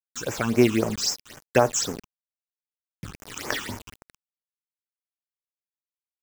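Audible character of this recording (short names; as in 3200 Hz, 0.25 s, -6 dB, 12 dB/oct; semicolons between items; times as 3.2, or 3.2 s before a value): a quantiser's noise floor 6-bit, dither none; random-step tremolo; phasing stages 8, 3.8 Hz, lowest notch 550–4000 Hz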